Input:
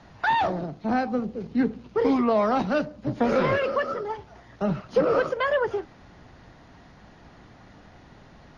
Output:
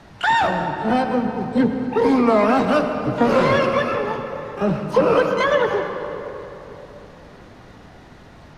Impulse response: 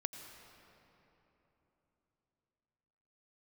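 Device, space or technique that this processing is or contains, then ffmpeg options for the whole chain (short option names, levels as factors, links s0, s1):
shimmer-style reverb: -filter_complex "[0:a]asettb=1/sr,asplit=3[s0][s1][s2];[s0]atrim=end=1.254[s3];[s1]atrim=start=1.25:end=1.85,asetpts=PTS-STARTPTS,afade=t=in:d=0.004:c=qsin,afade=t=out:st=0.596:d=0.004:c=qsin,equalizer=f=130:w=3.1:g=9[s4];[s2]atrim=start=1.846[s5];[s3][s4]acrossfade=d=0.004:c1=hsin:c2=qsin[s6];[s6][s5]acrossfade=d=0.004:c1=qsin:c2=hsin,asplit=2[s7][s8];[s8]asetrate=88200,aresample=44100,atempo=0.5,volume=0.316[s9];[s7][s9]amix=inputs=2:normalize=0[s10];[1:a]atrim=start_sample=2205[s11];[s10][s11]afir=irnorm=-1:irlink=0,volume=2"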